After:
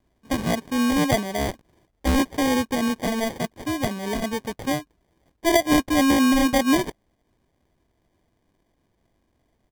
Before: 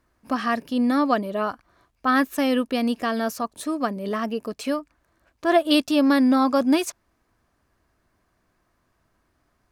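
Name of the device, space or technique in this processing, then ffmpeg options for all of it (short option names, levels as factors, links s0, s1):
crushed at another speed: -af "asetrate=35280,aresample=44100,acrusher=samples=41:mix=1:aa=0.000001,asetrate=55125,aresample=44100"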